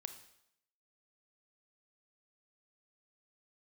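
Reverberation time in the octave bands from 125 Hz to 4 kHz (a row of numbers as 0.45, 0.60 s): 0.75, 0.75, 0.75, 0.75, 0.75, 0.75 s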